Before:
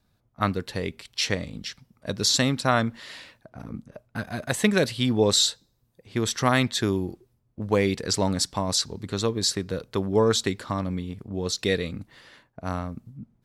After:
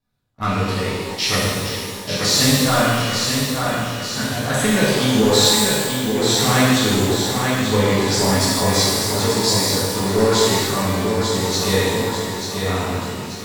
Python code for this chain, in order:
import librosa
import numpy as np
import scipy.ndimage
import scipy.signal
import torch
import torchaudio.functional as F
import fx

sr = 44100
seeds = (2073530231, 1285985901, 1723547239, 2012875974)

y = fx.echo_feedback(x, sr, ms=888, feedback_pct=52, wet_db=-7.0)
y = fx.leveller(y, sr, passes=2)
y = fx.rev_shimmer(y, sr, seeds[0], rt60_s=1.5, semitones=12, shimmer_db=-8, drr_db=-9.5)
y = F.gain(torch.from_numpy(y), -9.0).numpy()